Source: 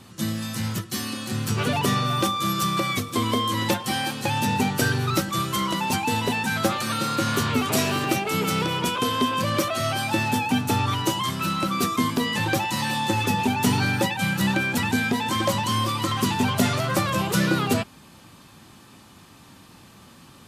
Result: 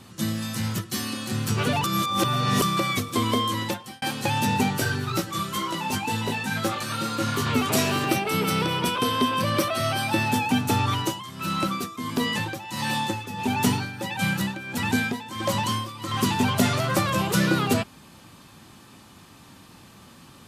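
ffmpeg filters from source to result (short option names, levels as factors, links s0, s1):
-filter_complex "[0:a]asplit=3[s0][s1][s2];[s0]afade=t=out:st=4.78:d=0.02[s3];[s1]flanger=delay=17.5:depth=2.4:speed=2.1,afade=t=in:st=4.78:d=0.02,afade=t=out:st=7.45:d=0.02[s4];[s2]afade=t=in:st=7.45:d=0.02[s5];[s3][s4][s5]amix=inputs=3:normalize=0,asettb=1/sr,asplit=3[s6][s7][s8];[s6]atrim=end=8.094[s9];[s7]atrim=start=8.09:end=10.31,asetpts=PTS-STARTPTS,afade=t=in:d=0.004:c=qsin,afade=t=out:st=2.216:d=0.004:c=qsin,bandreject=f=6900:w=5.8[s10];[s8]atrim=start=10.306[s11];[s9][s10]acrossfade=d=0.004:c1=hsin:c2=qsin[s12];[s12][s11]acrossfade=d=0.004:c1=qsin:c2=hsin,asettb=1/sr,asplit=3[s13][s14][s15];[s13]atrim=end=10.944[s16];[s14]atrim=start=10.94:end=16.14,asetpts=PTS-STARTPTS,afade=t=in:d=0.004:c=qsin,afade=t=out:st=5.196:d=0.004:c=qsin,tremolo=f=1.5:d=0.78[s17];[s15]atrim=start=16.136[s18];[s16][s17]acrossfade=d=0.004:c1=hsin:c2=qsin[s19];[s19][s18]acrossfade=d=0.004:c1=qsin:c2=hsin,asplit=4[s20][s21][s22][s23];[s20]atrim=end=1.842[s24];[s21]atrim=start=1.838:end=2.622,asetpts=PTS-STARTPTS,areverse[s25];[s22]atrim=start=2.618:end=4.02,asetpts=PTS-STARTPTS,afade=t=out:st=0.802:d=0.6[s26];[s23]atrim=start=4.02,asetpts=PTS-STARTPTS,afade=t=in:d=0.004:c=hsin[s27];[s24][s25]acrossfade=d=0.004:c1=hsin:c2=hsin[s28];[s26][s27]concat=n=2:v=0:a=1[s29];[s28][s29]acrossfade=d=0.004:c1=hsin:c2=hsin"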